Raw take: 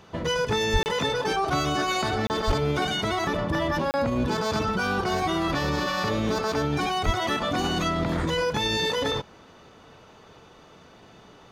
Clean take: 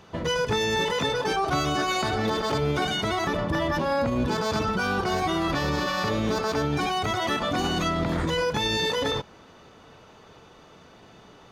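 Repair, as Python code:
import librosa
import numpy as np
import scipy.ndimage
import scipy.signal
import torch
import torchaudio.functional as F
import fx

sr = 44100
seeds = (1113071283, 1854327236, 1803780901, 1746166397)

y = fx.highpass(x, sr, hz=140.0, slope=24, at=(0.72, 0.84), fade=0.02)
y = fx.highpass(y, sr, hz=140.0, slope=24, at=(2.46, 2.58), fade=0.02)
y = fx.highpass(y, sr, hz=140.0, slope=24, at=(7.05, 7.17), fade=0.02)
y = fx.fix_interpolate(y, sr, at_s=(0.83, 2.27, 3.91), length_ms=29.0)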